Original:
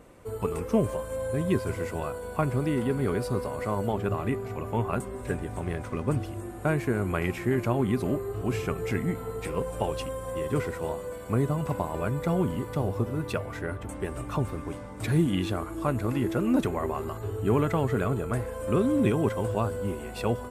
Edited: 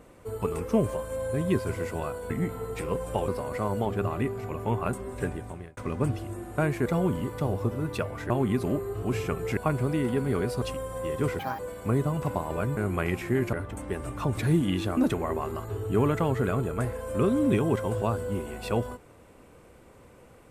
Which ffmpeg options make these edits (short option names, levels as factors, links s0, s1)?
-filter_complex "[0:a]asplit=14[s0][s1][s2][s3][s4][s5][s6][s7][s8][s9][s10][s11][s12][s13];[s0]atrim=end=2.302[s14];[s1]atrim=start=8.958:end=9.942[s15];[s2]atrim=start=3.348:end=5.84,asetpts=PTS-STARTPTS,afade=t=out:st=2.012:d=0.48[s16];[s3]atrim=start=5.84:end=6.932,asetpts=PTS-STARTPTS,afade=t=in:d=0.004:c=hsin[s17];[s4]atrim=start=12.208:end=13.652[s18];[s5]atrim=start=7.688:end=8.962[s19];[s6]atrim=start=2.298:end=3.352[s20];[s7]atrim=start=9.938:end=10.714[s21];[s8]atrim=start=10.71:end=11.03,asetpts=PTS-STARTPTS,asetrate=70560,aresample=44100[s22];[s9]atrim=start=11.026:end=12.212[s23];[s10]atrim=start=6.928:end=7.692[s24];[s11]atrim=start=13.648:end=14.492[s25];[s12]atrim=start=15.018:end=15.622[s26];[s13]atrim=start=16.498[s27];[s14][s15]acrossfade=d=0.004:c1=hsin:c2=hsin[s28];[s16][s17]concat=n=2:v=0:a=1[s29];[s28][s29]acrossfade=d=0.004:c1=hsin:c2=hsin[s30];[s30][s18]acrossfade=d=0.004:c1=hsin:c2=hsin[s31];[s31][s19]acrossfade=d=0.004:c1=hsin:c2=hsin[s32];[s32][s20]acrossfade=d=0.004:c1=hsin:c2=hsin[s33];[s33][s21]acrossfade=d=0.004:c1=hsin:c2=hsin[s34];[s34][s22]acrossfade=d=0.004:c1=hsin:c2=hsin[s35];[s35][s23]acrossfade=d=0.004:c1=hsin:c2=hsin[s36];[s36][s24]acrossfade=d=0.004:c1=hsin:c2=hsin[s37];[s37][s25]acrossfade=d=0.004:c1=hsin:c2=hsin[s38];[s38][s26]acrossfade=d=0.004:c1=hsin:c2=hsin[s39];[s39][s27]acrossfade=d=0.004:c1=hsin:c2=hsin"